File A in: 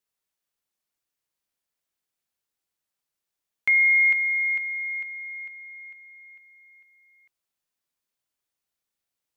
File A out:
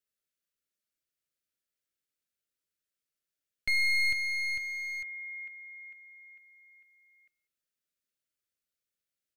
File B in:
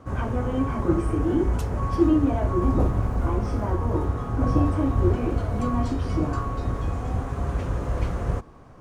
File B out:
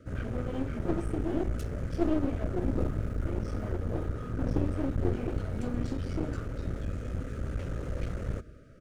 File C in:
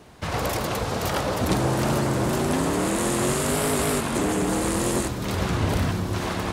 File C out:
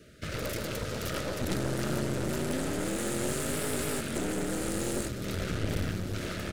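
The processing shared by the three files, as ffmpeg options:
-af "asuperstop=centerf=890:order=20:qfactor=1.6,aecho=1:1:195:0.0708,aeval=exprs='clip(val(0),-1,0.0251)':c=same,volume=0.562"

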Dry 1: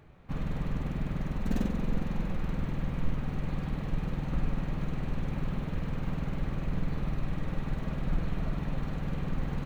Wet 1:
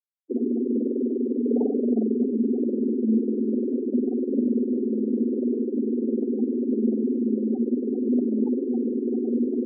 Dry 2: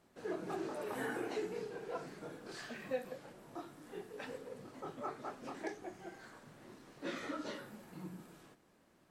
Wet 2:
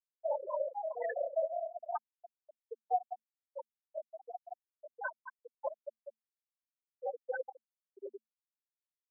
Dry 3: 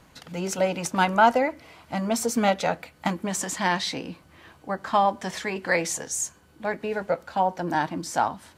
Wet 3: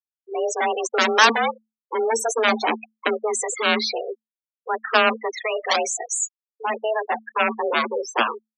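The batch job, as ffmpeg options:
-af "aeval=exprs='0.531*(cos(1*acos(clip(val(0)/0.531,-1,1)))-cos(1*PI/2))+0.00422*(cos(2*acos(clip(val(0)/0.531,-1,1)))-cos(2*PI/2))+0.0075*(cos(4*acos(clip(val(0)/0.531,-1,1)))-cos(4*PI/2))+0.0188*(cos(5*acos(clip(val(0)/0.531,-1,1)))-cos(5*PI/2))+0.237*(cos(7*acos(clip(val(0)/0.531,-1,1)))-cos(7*PI/2))':c=same,afftfilt=real='re*gte(hypot(re,im),0.1)':imag='im*gte(hypot(re,im),0.1)':win_size=1024:overlap=0.75,afreqshift=220,volume=1.19"

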